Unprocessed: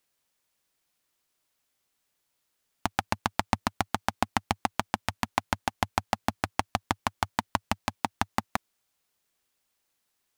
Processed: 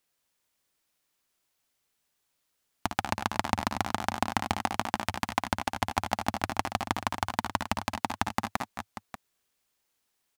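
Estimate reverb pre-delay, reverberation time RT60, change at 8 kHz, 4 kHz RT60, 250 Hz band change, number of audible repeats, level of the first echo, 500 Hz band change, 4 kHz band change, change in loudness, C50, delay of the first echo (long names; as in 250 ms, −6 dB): no reverb audible, no reverb audible, 0.0 dB, no reverb audible, 0.0 dB, 3, −8.0 dB, 0.0 dB, 0.0 dB, 0.0 dB, no reverb audible, 57 ms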